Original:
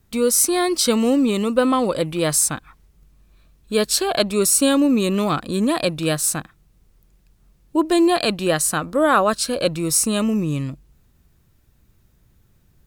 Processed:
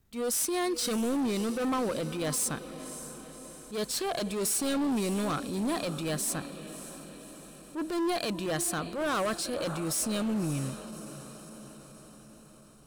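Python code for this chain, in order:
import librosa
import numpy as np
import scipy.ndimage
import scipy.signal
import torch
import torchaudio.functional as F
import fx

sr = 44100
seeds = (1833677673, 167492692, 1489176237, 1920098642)

y = fx.echo_diffused(x, sr, ms=588, feedback_pct=58, wet_db=-15.5)
y = np.clip(y, -10.0 ** (-18.0 / 20.0), 10.0 ** (-18.0 / 20.0))
y = fx.transient(y, sr, attack_db=-8, sustain_db=1)
y = F.gain(torch.from_numpy(y), -8.0).numpy()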